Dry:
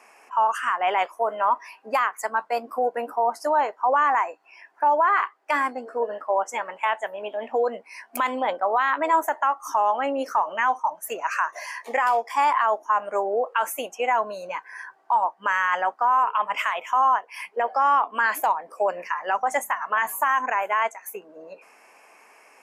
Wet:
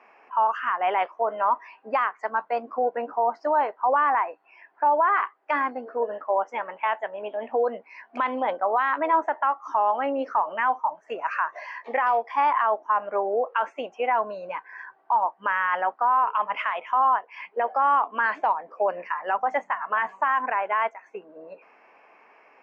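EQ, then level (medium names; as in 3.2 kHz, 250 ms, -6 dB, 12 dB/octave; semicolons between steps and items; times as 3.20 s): Gaussian low-pass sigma 1.9 samples; distance through air 160 m; 0.0 dB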